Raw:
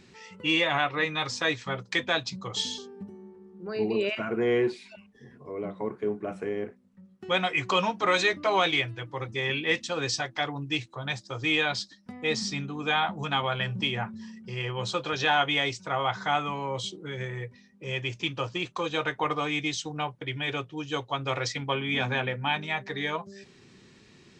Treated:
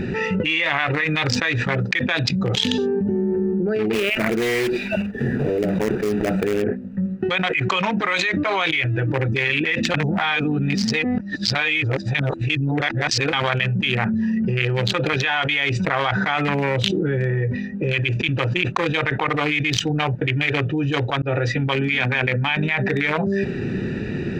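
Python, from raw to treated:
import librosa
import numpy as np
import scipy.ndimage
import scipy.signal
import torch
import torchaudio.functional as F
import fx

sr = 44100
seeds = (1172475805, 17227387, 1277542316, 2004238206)

y = fx.block_float(x, sr, bits=3, at=(3.93, 6.63))
y = fx.edit(y, sr, fx.reverse_span(start_s=9.94, length_s=3.39),
    fx.fade_in_span(start_s=21.22, length_s=0.6), tone=tone)
y = fx.wiener(y, sr, points=41)
y = fx.peak_eq(y, sr, hz=2100.0, db=12.5, octaves=1.3)
y = fx.env_flatten(y, sr, amount_pct=100)
y = F.gain(torch.from_numpy(y), -8.5).numpy()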